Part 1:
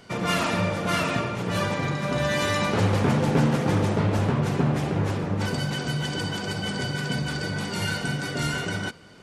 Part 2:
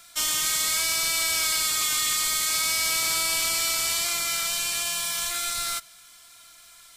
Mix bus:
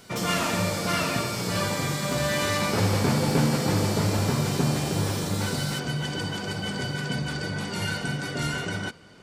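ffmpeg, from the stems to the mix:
ffmpeg -i stem1.wav -i stem2.wav -filter_complex "[0:a]volume=-1.5dB[link_01];[1:a]acompressor=threshold=-27dB:ratio=16,aeval=exprs='(mod(8.91*val(0)+1,2)-1)/8.91':channel_layout=same,equalizer=frequency=4800:width_type=o:width=0.87:gain=6,volume=-7.5dB[link_02];[link_01][link_02]amix=inputs=2:normalize=0" out.wav

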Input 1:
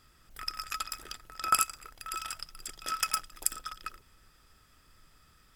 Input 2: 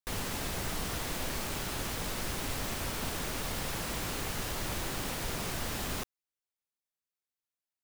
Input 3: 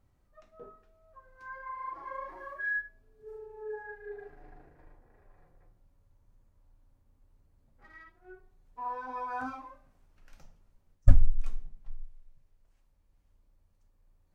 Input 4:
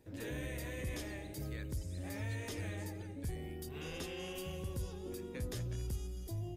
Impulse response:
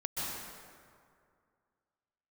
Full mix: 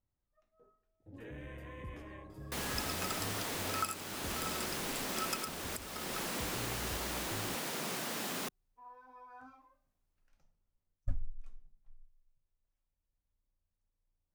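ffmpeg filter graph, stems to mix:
-filter_complex "[0:a]adelay=2300,volume=-6dB[link_01];[1:a]highpass=frequency=170:width=0.5412,highpass=frequency=170:width=1.3066,adelay=2450,volume=-1.5dB[link_02];[2:a]volume=-17.5dB[link_03];[3:a]afwtdn=0.00316,adelay=1000,volume=-5.5dB[link_04];[link_01][link_02][link_03][link_04]amix=inputs=4:normalize=0,alimiter=limit=-21dB:level=0:latency=1:release=431"

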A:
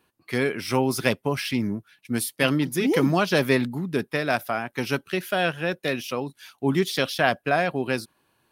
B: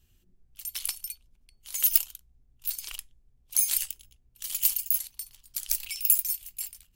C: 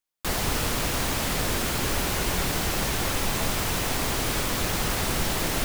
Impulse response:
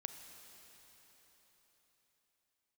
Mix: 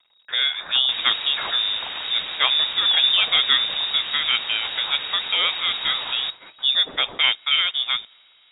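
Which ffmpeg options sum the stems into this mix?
-filter_complex "[0:a]volume=1dB,asplit=2[link_01][link_02];[link_02]volume=-14.5dB[link_03];[1:a]volume=2dB,asplit=2[link_04][link_05];[link_05]volume=-10.5dB[link_06];[2:a]adelay=650,volume=-3dB[link_07];[3:a]atrim=start_sample=2205[link_08];[link_03][link_06]amix=inputs=2:normalize=0[link_09];[link_09][link_08]afir=irnorm=-1:irlink=0[link_10];[link_01][link_04][link_07][link_10]amix=inputs=4:normalize=0,acrusher=bits=7:dc=4:mix=0:aa=0.000001,lowpass=frequency=3200:width_type=q:width=0.5098,lowpass=frequency=3200:width_type=q:width=0.6013,lowpass=frequency=3200:width_type=q:width=0.9,lowpass=frequency=3200:width_type=q:width=2.563,afreqshift=-3800"

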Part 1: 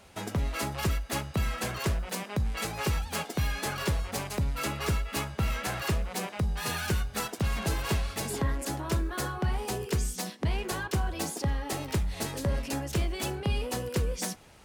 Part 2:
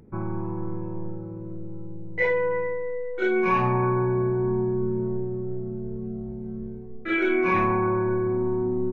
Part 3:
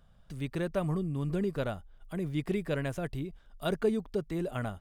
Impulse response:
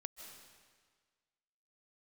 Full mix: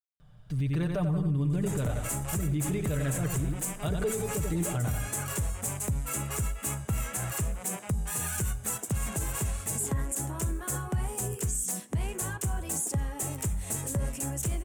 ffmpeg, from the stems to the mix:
-filter_complex "[0:a]highshelf=frequency=6000:width_type=q:width=3:gain=10,asoftclip=type=hard:threshold=-14dB,adelay=1500,volume=-3.5dB[link_01];[2:a]aecho=1:1:6.7:0.59,adelay=200,volume=1dB,asplit=2[link_02][link_03];[link_03]volume=-7dB,aecho=0:1:89|178|267|356|445|534:1|0.43|0.185|0.0795|0.0342|0.0147[link_04];[link_01][link_02][link_04]amix=inputs=3:normalize=0,equalizer=frequency=110:width=1.3:gain=10,alimiter=limit=-21.5dB:level=0:latency=1:release=47"

